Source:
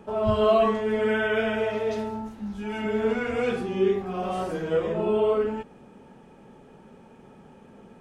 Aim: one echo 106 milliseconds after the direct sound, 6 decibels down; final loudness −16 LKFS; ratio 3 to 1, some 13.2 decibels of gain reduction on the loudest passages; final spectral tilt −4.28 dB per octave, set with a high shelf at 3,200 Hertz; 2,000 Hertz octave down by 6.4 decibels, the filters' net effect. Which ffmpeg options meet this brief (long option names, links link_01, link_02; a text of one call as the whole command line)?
ffmpeg -i in.wav -af "equalizer=frequency=2000:width_type=o:gain=-8,highshelf=frequency=3200:gain=-5,acompressor=threshold=-36dB:ratio=3,aecho=1:1:106:0.501,volume=20dB" out.wav